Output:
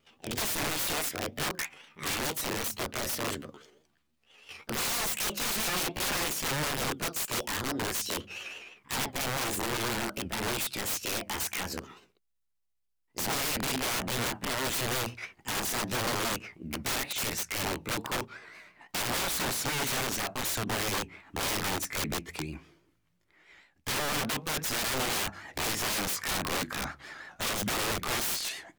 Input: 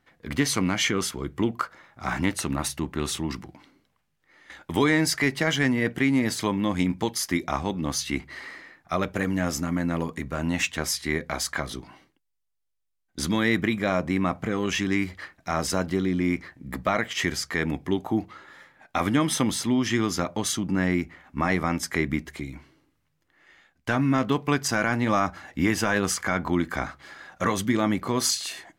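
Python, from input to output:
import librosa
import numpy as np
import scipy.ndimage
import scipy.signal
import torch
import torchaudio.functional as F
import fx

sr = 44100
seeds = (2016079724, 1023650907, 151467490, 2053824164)

y = fx.pitch_glide(x, sr, semitones=8.0, runs='ending unshifted')
y = (np.mod(10.0 ** (25.5 / 20.0) * y + 1.0, 2.0) - 1.0) / 10.0 ** (25.5 / 20.0)
y = fx.vibrato(y, sr, rate_hz=6.1, depth_cents=88.0)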